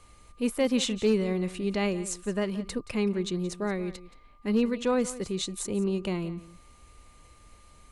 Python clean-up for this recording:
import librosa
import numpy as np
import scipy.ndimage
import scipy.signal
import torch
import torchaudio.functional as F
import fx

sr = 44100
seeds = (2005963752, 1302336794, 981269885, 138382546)

y = fx.fix_declip(x, sr, threshold_db=-16.0)
y = fx.notch(y, sr, hz=1200.0, q=30.0)
y = fx.fix_echo_inverse(y, sr, delay_ms=175, level_db=-16.5)